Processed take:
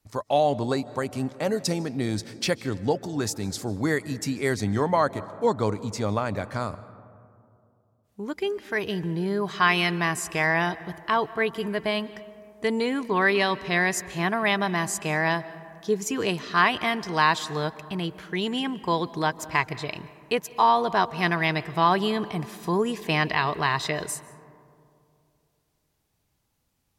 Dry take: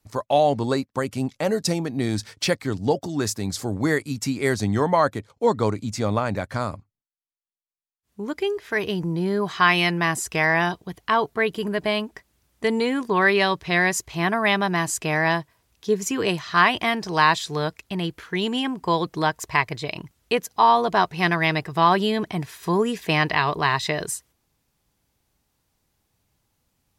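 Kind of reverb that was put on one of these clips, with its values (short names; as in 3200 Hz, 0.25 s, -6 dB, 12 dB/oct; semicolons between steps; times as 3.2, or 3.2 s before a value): digital reverb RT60 2.6 s, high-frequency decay 0.3×, pre-delay 0.11 s, DRR 17 dB; gain -3 dB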